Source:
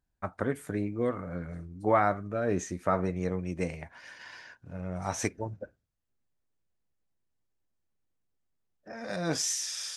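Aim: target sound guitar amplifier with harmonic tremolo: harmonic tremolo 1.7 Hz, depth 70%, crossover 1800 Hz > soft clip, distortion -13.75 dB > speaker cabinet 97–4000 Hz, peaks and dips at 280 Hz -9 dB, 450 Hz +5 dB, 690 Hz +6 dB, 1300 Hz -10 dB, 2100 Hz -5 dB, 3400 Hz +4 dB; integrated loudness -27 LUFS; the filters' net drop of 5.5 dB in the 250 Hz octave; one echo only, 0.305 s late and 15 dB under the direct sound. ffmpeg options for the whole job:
-filter_complex "[0:a]equalizer=f=250:t=o:g=-5,aecho=1:1:305:0.178,acrossover=split=1800[a][b];[a]aeval=exprs='val(0)*(1-0.7/2+0.7/2*cos(2*PI*1.7*n/s))':c=same[c];[b]aeval=exprs='val(0)*(1-0.7/2-0.7/2*cos(2*PI*1.7*n/s))':c=same[d];[c][d]amix=inputs=2:normalize=0,asoftclip=threshold=-24dB,highpass=97,equalizer=f=280:t=q:w=4:g=-9,equalizer=f=450:t=q:w=4:g=5,equalizer=f=690:t=q:w=4:g=6,equalizer=f=1.3k:t=q:w=4:g=-10,equalizer=f=2.1k:t=q:w=4:g=-5,equalizer=f=3.4k:t=q:w=4:g=4,lowpass=f=4k:w=0.5412,lowpass=f=4k:w=1.3066,volume=10dB"

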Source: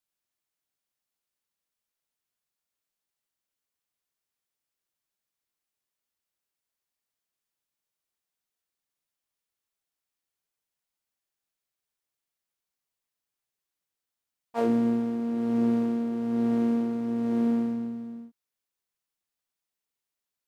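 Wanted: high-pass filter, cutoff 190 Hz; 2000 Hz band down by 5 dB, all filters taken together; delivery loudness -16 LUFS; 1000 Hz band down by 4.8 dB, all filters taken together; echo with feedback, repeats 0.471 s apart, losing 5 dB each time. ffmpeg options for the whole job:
-af "highpass=190,equalizer=f=1k:t=o:g=-7,equalizer=f=2k:t=o:g=-4,aecho=1:1:471|942|1413|1884|2355|2826|3297:0.562|0.315|0.176|0.0988|0.0553|0.031|0.0173,volume=13.5dB"

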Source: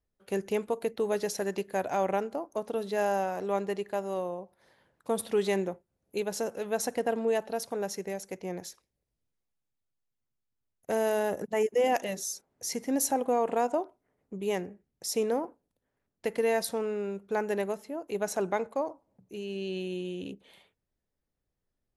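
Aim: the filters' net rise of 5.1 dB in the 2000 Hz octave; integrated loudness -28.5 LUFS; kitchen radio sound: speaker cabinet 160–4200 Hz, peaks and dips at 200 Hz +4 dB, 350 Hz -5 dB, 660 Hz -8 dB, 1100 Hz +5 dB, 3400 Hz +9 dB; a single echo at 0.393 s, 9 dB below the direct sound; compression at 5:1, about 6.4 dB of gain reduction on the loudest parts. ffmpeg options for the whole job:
-af "equalizer=f=2k:t=o:g=5.5,acompressor=threshold=-29dB:ratio=5,highpass=160,equalizer=f=200:t=q:w=4:g=4,equalizer=f=350:t=q:w=4:g=-5,equalizer=f=660:t=q:w=4:g=-8,equalizer=f=1.1k:t=q:w=4:g=5,equalizer=f=3.4k:t=q:w=4:g=9,lowpass=f=4.2k:w=0.5412,lowpass=f=4.2k:w=1.3066,aecho=1:1:393:0.355,volume=8dB"

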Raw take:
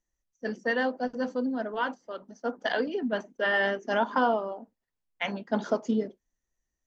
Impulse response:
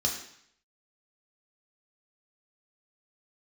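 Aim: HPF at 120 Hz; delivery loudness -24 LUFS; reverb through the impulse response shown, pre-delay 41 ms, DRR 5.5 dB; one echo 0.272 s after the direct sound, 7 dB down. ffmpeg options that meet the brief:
-filter_complex "[0:a]highpass=120,aecho=1:1:272:0.447,asplit=2[a][b];[1:a]atrim=start_sample=2205,adelay=41[c];[b][c]afir=irnorm=-1:irlink=0,volume=-12.5dB[d];[a][d]amix=inputs=2:normalize=0,volume=3.5dB"

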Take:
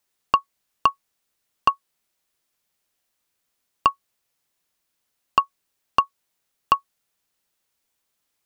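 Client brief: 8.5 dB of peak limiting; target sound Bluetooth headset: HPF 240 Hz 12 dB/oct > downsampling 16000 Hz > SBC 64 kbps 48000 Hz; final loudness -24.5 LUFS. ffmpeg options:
-af "alimiter=limit=-11dB:level=0:latency=1,highpass=240,aresample=16000,aresample=44100,volume=7dB" -ar 48000 -c:a sbc -b:a 64k

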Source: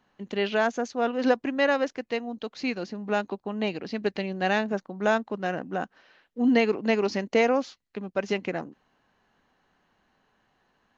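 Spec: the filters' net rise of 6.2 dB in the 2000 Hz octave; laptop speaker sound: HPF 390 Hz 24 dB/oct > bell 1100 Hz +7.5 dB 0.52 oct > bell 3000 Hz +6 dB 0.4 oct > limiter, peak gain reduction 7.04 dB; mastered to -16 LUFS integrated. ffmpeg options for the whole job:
-af "highpass=f=390:w=0.5412,highpass=f=390:w=1.3066,equalizer=f=1.1k:t=o:w=0.52:g=7.5,equalizer=f=2k:t=o:g=5.5,equalizer=f=3k:t=o:w=0.4:g=6,volume=12dB,alimiter=limit=-2dB:level=0:latency=1"

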